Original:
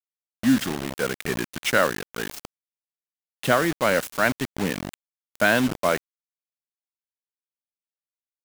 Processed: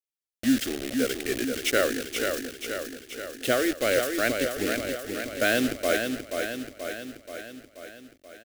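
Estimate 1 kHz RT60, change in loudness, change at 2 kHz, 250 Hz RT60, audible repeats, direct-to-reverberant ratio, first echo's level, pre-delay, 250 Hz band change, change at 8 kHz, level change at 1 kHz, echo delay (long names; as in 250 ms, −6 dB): no reverb audible, −3.5 dB, −3.0 dB, no reverb audible, 7, no reverb audible, −5.5 dB, no reverb audible, −2.0 dB, +1.5 dB, −7.5 dB, 481 ms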